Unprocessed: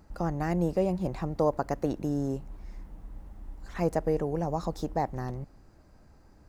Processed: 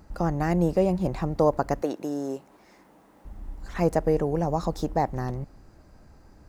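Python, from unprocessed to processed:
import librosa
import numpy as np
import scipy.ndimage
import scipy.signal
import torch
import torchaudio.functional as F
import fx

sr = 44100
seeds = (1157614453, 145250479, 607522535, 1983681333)

y = fx.highpass(x, sr, hz=340.0, slope=12, at=(1.82, 3.25))
y = F.gain(torch.from_numpy(y), 4.5).numpy()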